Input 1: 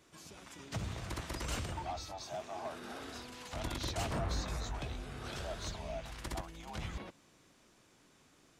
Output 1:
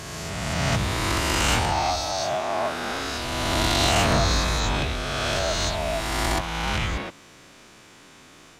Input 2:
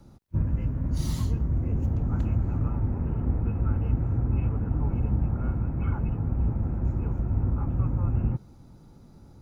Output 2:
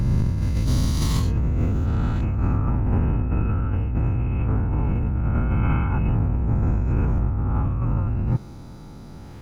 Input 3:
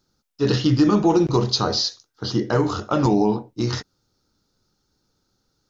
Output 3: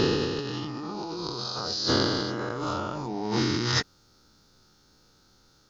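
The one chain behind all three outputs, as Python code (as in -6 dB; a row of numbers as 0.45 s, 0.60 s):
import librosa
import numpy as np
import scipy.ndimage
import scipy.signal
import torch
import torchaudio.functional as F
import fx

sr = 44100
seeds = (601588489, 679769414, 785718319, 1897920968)

y = fx.spec_swells(x, sr, rise_s=2.33)
y = fx.peak_eq(y, sr, hz=2100.0, db=5.0, octaves=2.6)
y = fx.over_compress(y, sr, threshold_db=-25.0, ratio=-1.0)
y = librosa.util.normalize(y) * 10.0 ** (-9 / 20.0)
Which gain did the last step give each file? +10.5 dB, +4.0 dB, -5.0 dB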